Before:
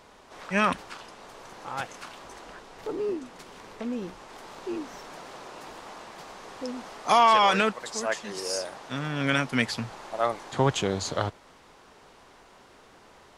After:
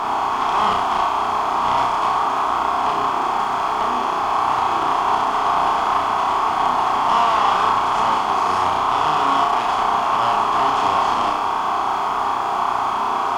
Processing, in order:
compressor on every frequency bin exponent 0.2
three-way crossover with the lows and the highs turned down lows −14 dB, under 470 Hz, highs −16 dB, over 2,900 Hz
in parallel at −3 dB: output level in coarse steps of 9 dB
on the sum: phaser with its sweep stopped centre 530 Hz, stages 6
tube saturation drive 11 dB, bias 0.25
bit reduction 9 bits
on a send: flutter between parallel walls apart 5.6 metres, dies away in 0.61 s
on the sum: level −2.5 dB

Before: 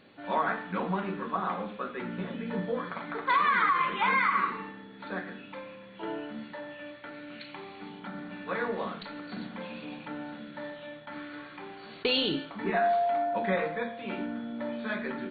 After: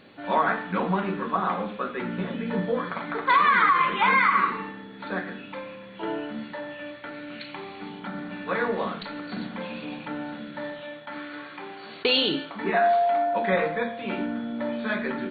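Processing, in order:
0:10.81–0:13.53: low-shelf EQ 160 Hz −10 dB
level +5.5 dB

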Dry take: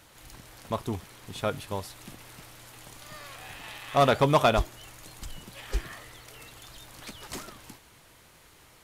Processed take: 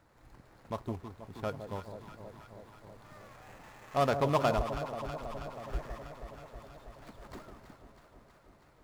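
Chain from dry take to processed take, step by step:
running median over 15 samples
delay that swaps between a low-pass and a high-pass 161 ms, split 910 Hz, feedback 85%, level −8.5 dB
level −6.5 dB

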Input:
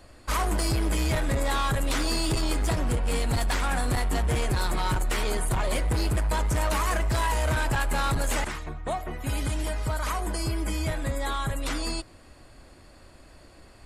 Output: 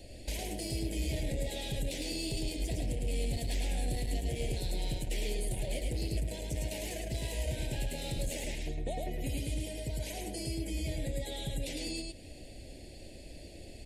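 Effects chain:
Chebyshev band-stop filter 580–2,500 Hz, order 2
downward compressor, threshold −37 dBFS, peak gain reduction 12.5 dB
single-tap delay 107 ms −3 dB
level +2.5 dB

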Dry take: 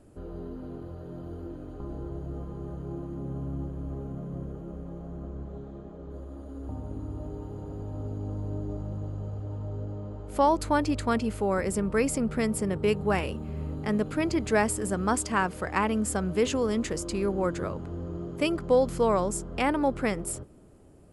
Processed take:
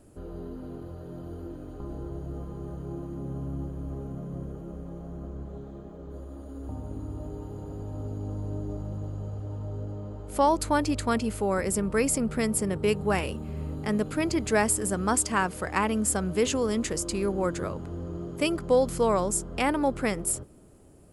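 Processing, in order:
high-shelf EQ 6,200 Hz +9 dB

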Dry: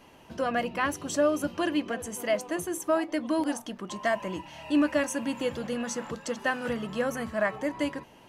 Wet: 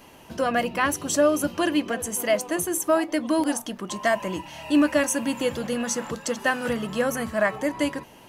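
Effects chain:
high-shelf EQ 8,000 Hz +10 dB
level +4.5 dB

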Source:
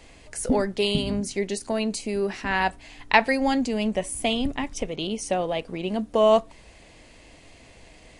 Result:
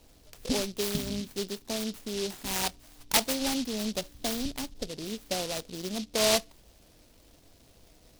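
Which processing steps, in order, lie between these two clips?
gain on a spectral selection 0:04.72–0:05.06, 1,200–8,400 Hz −17 dB
low-pass that shuts in the quiet parts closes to 2,300 Hz, open at −9.5 dBFS
short delay modulated by noise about 4,100 Hz, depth 0.21 ms
level −7 dB

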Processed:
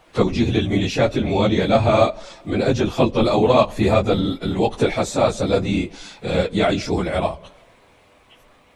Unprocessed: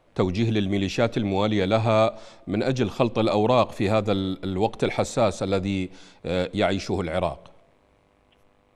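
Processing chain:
random phases in long frames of 50 ms
one half of a high-frequency compander encoder only
level +4.5 dB

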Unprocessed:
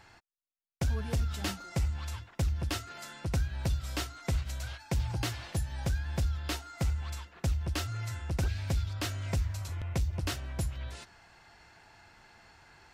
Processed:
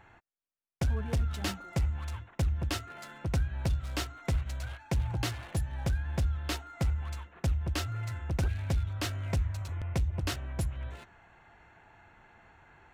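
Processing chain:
adaptive Wiener filter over 9 samples
level +1 dB

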